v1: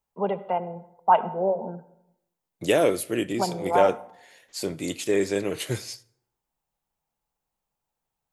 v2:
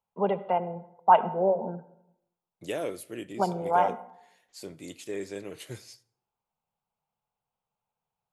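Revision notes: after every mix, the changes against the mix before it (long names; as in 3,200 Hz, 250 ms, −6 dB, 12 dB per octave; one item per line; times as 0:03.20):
second voice −12.0 dB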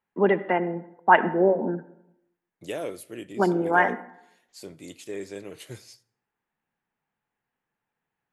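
first voice: remove phaser with its sweep stopped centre 740 Hz, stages 4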